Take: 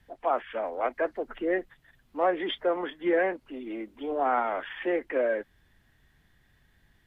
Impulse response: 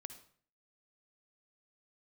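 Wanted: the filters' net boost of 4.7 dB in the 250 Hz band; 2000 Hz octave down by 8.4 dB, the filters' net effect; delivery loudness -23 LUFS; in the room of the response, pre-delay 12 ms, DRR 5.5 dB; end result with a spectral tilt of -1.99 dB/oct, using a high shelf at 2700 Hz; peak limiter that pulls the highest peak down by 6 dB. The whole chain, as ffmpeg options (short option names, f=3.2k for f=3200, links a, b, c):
-filter_complex "[0:a]equalizer=f=250:t=o:g=8,equalizer=f=2k:t=o:g=-8,highshelf=f=2.7k:g=-8,alimiter=limit=-19.5dB:level=0:latency=1,asplit=2[a][b];[1:a]atrim=start_sample=2205,adelay=12[c];[b][c]afir=irnorm=-1:irlink=0,volume=-0.5dB[d];[a][d]amix=inputs=2:normalize=0,volume=6.5dB"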